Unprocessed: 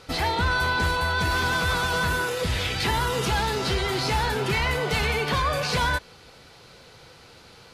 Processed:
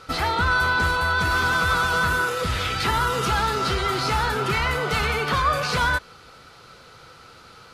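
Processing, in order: bell 1300 Hz +12.5 dB 0.29 oct

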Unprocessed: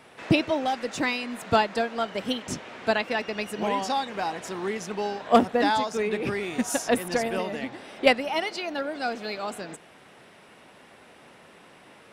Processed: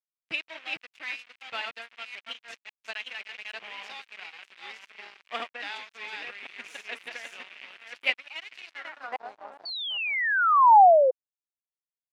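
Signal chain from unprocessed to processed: reverse delay 0.539 s, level -2.5 dB; crossover distortion -29 dBFS; painted sound fall, 9.65–11.11, 500–4600 Hz -13 dBFS; band-pass sweep 2500 Hz -> 810 Hz, 8.66–9.25

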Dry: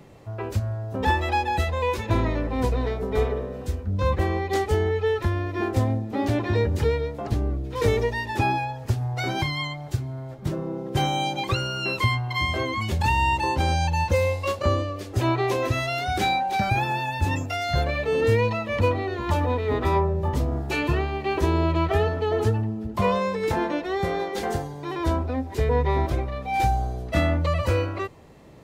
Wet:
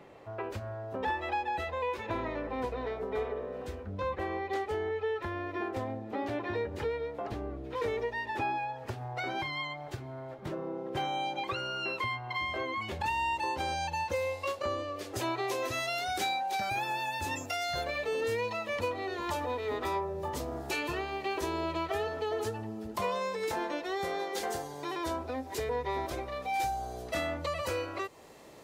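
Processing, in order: tone controls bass -14 dB, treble -11 dB, from 13.05 s treble -1 dB, from 15.15 s treble +6 dB; compressor 2:1, threshold -36 dBFS, peak gain reduction 9.5 dB

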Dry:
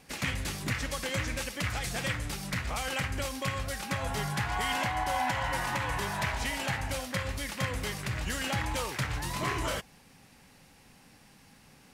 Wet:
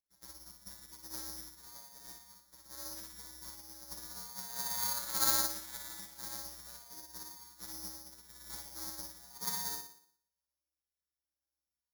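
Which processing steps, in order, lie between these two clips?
self-modulated delay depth 0.96 ms; low shelf 260 Hz -8 dB; in parallel at -11 dB: bit-crush 4-bit; on the sum: robotiser 127 Hz; small resonant body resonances 360/1100 Hz, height 11 dB, ringing for 45 ms; vibrato 0.39 Hz 11 cents; flutter echo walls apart 10.1 m, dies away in 1.4 s; mistuned SSB -190 Hz 220–2100 Hz; careless resampling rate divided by 8×, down none, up zero stuff; upward expander 2.5:1, over -45 dBFS; gain -6.5 dB

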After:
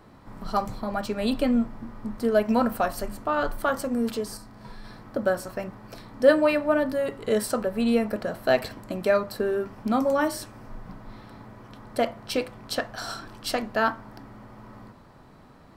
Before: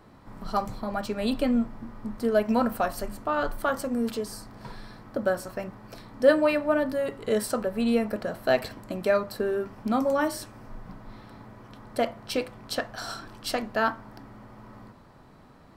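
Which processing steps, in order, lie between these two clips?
4.37–4.85 harmonic-percussive split percussive -12 dB; gain +1.5 dB

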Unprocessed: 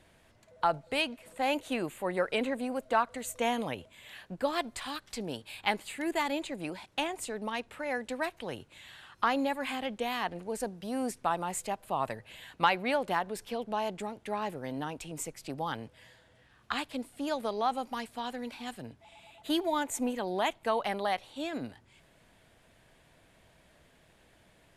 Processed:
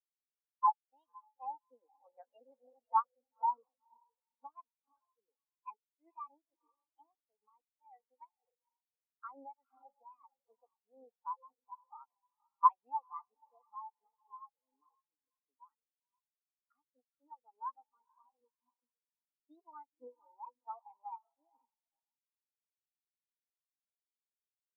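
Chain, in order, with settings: formant shift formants +3 st; speaker cabinet 340–3100 Hz, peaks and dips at 370 Hz -6 dB, 620 Hz -8 dB, 1700 Hz -6 dB, 2900 Hz -5 dB; diffused feedback echo 0.495 s, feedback 52%, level -5.5 dB; spectral expander 4:1

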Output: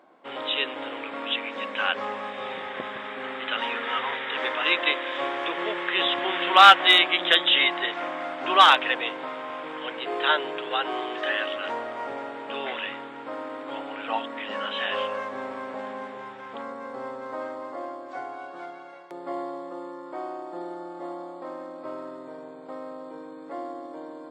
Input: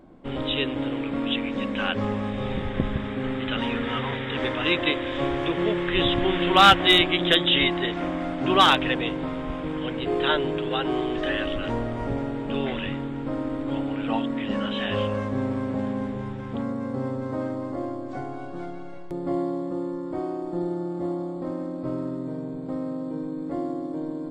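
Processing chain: HPF 780 Hz 12 dB/oct; high shelf 3700 Hz -9 dB; gain +5 dB

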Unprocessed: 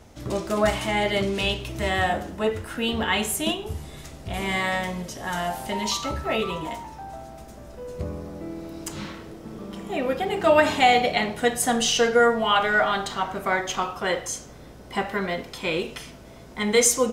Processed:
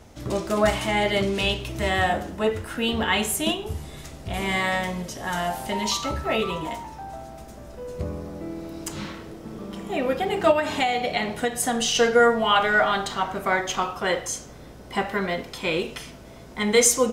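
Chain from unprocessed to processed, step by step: 10.51–11.95 compressor, threshold -21 dBFS, peak gain reduction 9 dB; gain +1 dB

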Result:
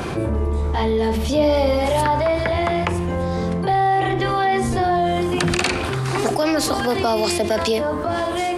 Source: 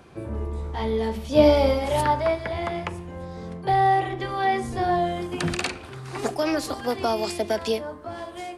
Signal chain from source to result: fast leveller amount 70%; gain -3 dB

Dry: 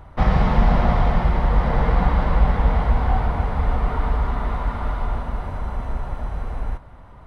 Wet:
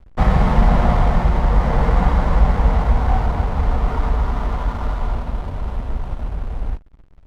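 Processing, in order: backlash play -32 dBFS; gain +2.5 dB

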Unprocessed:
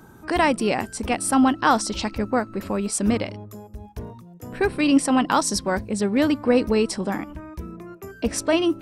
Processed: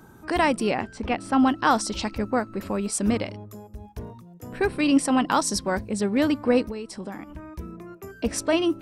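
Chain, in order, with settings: 0.71–1.4 LPF 3600 Hz 12 dB/oct; 6.61–7.45 compressor 8:1, threshold -29 dBFS, peak gain reduction 13 dB; gain -2 dB

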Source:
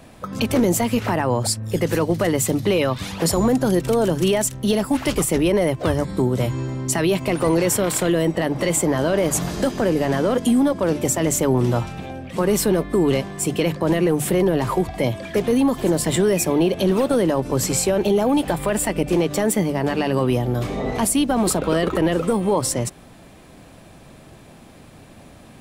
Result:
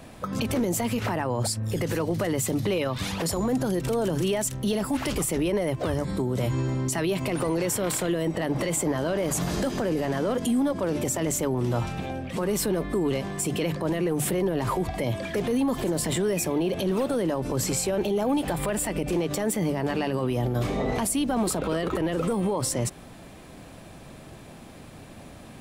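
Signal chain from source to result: limiter -18 dBFS, peak gain reduction 9.5 dB

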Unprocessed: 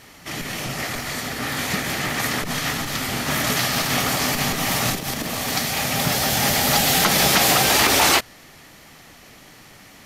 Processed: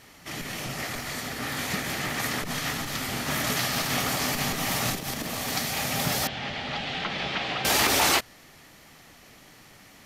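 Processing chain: 6.27–7.65 ladder low-pass 3900 Hz, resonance 35%; gain -5.5 dB

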